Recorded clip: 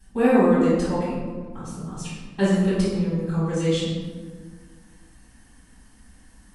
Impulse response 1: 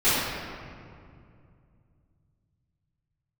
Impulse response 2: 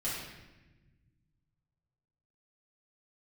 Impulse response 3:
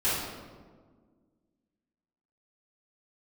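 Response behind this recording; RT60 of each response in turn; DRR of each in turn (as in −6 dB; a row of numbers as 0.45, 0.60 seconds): 3; 2.4, 1.1, 1.6 seconds; −14.5, −10.0, −13.5 decibels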